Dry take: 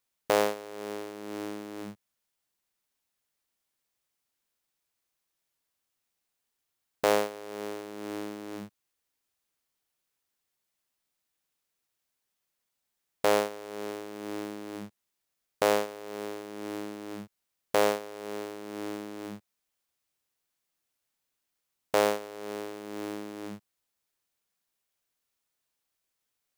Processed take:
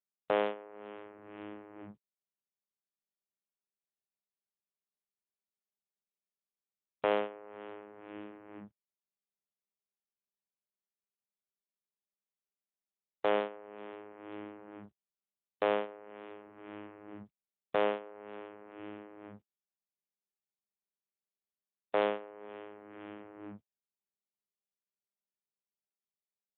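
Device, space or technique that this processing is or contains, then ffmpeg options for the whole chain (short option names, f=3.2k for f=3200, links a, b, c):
mobile call with aggressive noise cancelling: -af "highpass=f=120:w=0.5412,highpass=f=120:w=1.3066,afftdn=nr=31:nf=-50,volume=-4.5dB" -ar 8000 -c:a libopencore_amrnb -b:a 12200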